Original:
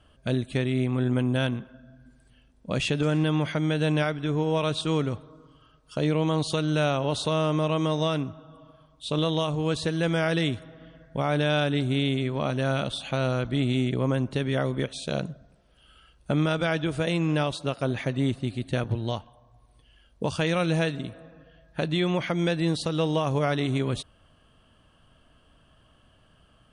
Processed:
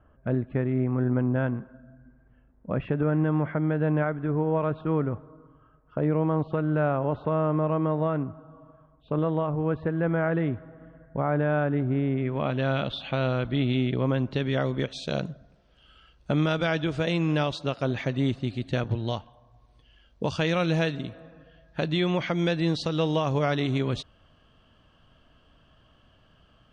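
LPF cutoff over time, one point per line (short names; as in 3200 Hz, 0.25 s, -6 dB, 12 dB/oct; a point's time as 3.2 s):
LPF 24 dB/oct
12.09 s 1700 Hz
12.61 s 4000 Hz
13.91 s 4000 Hz
14.83 s 6300 Hz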